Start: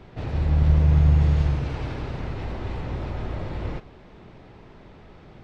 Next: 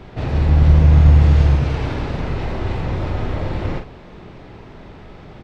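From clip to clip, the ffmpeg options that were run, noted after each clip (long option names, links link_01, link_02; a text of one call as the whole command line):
ffmpeg -i in.wav -filter_complex "[0:a]asplit=2[link_01][link_02];[link_02]adelay=44,volume=-7.5dB[link_03];[link_01][link_03]amix=inputs=2:normalize=0,volume=7.5dB" out.wav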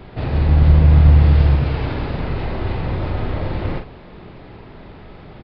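ffmpeg -i in.wav -af "aresample=11025,aresample=44100" out.wav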